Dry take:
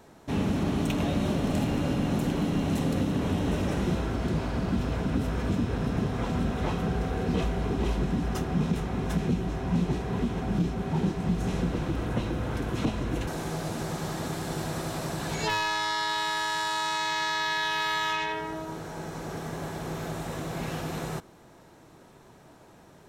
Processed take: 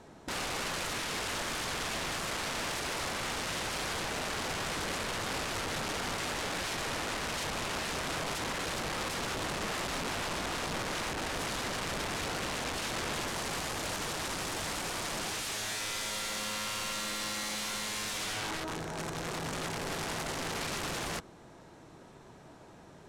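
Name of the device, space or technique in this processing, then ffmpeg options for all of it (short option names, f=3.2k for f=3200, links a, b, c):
overflowing digital effects unit: -af "aeval=exprs='(mod(31.6*val(0)+1,2)-1)/31.6':c=same,lowpass=9.5k"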